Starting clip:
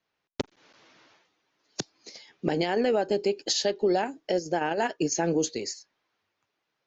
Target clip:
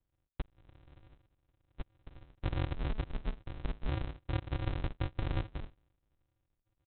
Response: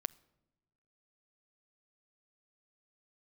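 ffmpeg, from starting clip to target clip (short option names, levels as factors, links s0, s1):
-af "acompressor=threshold=0.0282:ratio=6,aresample=8000,acrusher=samples=37:mix=1:aa=0.000001,aresample=44100,volume=1.12"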